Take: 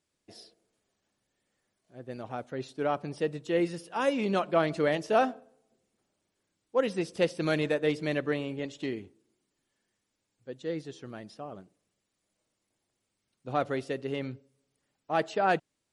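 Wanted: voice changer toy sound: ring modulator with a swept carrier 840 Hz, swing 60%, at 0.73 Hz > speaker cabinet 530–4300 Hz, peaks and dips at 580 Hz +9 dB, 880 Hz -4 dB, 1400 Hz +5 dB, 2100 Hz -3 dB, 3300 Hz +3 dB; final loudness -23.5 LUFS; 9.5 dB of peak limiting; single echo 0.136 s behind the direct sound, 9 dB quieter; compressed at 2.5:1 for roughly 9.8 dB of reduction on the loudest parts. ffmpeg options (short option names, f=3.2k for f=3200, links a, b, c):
-af "acompressor=threshold=-35dB:ratio=2.5,alimiter=level_in=7.5dB:limit=-24dB:level=0:latency=1,volume=-7.5dB,aecho=1:1:136:0.355,aeval=exprs='val(0)*sin(2*PI*840*n/s+840*0.6/0.73*sin(2*PI*0.73*n/s))':c=same,highpass=530,equalizer=f=580:t=q:w=4:g=9,equalizer=f=880:t=q:w=4:g=-4,equalizer=f=1.4k:t=q:w=4:g=5,equalizer=f=2.1k:t=q:w=4:g=-3,equalizer=f=3.3k:t=q:w=4:g=3,lowpass=f=4.3k:w=0.5412,lowpass=f=4.3k:w=1.3066,volume=20.5dB"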